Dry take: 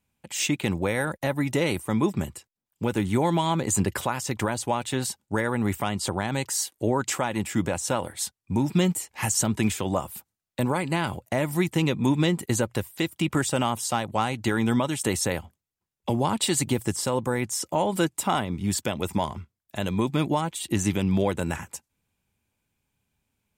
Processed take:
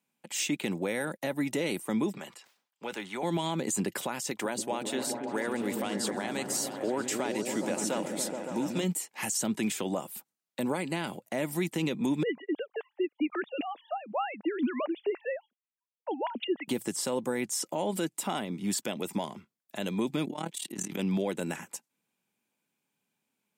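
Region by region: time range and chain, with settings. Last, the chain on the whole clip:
0:02.17–0:03.23: three-way crossover with the lows and the highs turned down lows −16 dB, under 560 Hz, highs −12 dB, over 5,800 Hz + level that may fall only so fast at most 130 dB per second
0:04.30–0:08.84: bass and treble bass −8 dB, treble 0 dB + echo whose low-pass opens from repeat to repeat 140 ms, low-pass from 200 Hz, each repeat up 1 octave, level 0 dB
0:12.23–0:16.68: three sine waves on the formant tracks + phaser with staggered stages 2.1 Hz
0:20.25–0:20.99: compressor whose output falls as the input rises −26 dBFS, ratio −0.5 + amplitude modulation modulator 37 Hz, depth 80%
whole clip: high-pass filter 180 Hz 24 dB per octave; dynamic equaliser 1,100 Hz, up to −6 dB, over −40 dBFS, Q 1.3; brickwall limiter −18 dBFS; level −2.5 dB

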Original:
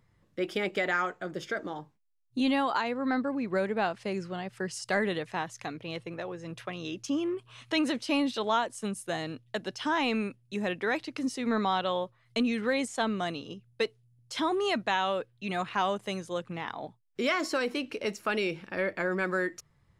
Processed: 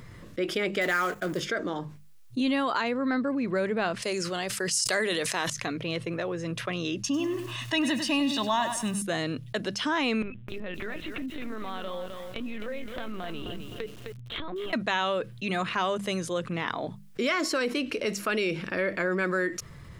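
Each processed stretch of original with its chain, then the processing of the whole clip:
0:00.81–0:01.40: mu-law and A-law mismatch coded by mu + high-shelf EQ 7,400 Hz +11.5 dB + noise gate −41 dBFS, range −17 dB
0:04.02–0:05.50: bass and treble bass −11 dB, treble +12 dB + level that may fall only so fast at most 60 dB per second
0:07.02–0:09.02: comb filter 1.1 ms, depth 82% + feedback echo at a low word length 99 ms, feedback 35%, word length 8 bits, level −11.5 dB
0:10.22–0:14.73: linear-prediction vocoder at 8 kHz pitch kept + downward compressor 5 to 1, threshold −42 dBFS + feedback echo at a low word length 259 ms, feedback 35%, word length 10 bits, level −8.5 dB
whole clip: parametric band 820 Hz −8 dB 0.32 octaves; mains-hum notches 50/100/150/200 Hz; envelope flattener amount 50%

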